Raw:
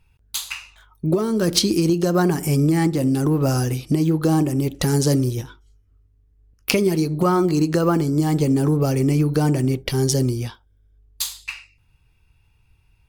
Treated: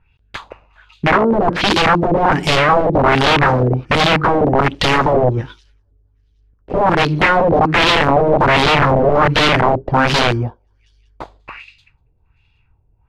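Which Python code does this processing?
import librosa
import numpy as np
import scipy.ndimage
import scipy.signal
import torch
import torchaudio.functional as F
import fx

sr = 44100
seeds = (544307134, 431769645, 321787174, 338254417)

y = fx.leveller(x, sr, passes=1)
y = fx.echo_wet_highpass(y, sr, ms=193, feedback_pct=49, hz=2500.0, wet_db=-22.5)
y = (np.mod(10.0 ** (12.0 / 20.0) * y + 1.0, 2.0) - 1.0) / 10.0 ** (12.0 / 20.0)
y = fx.filter_lfo_lowpass(y, sr, shape='sine', hz=1.3, low_hz=530.0, high_hz=3700.0, q=2.2)
y = y * librosa.db_to_amplitude(3.0)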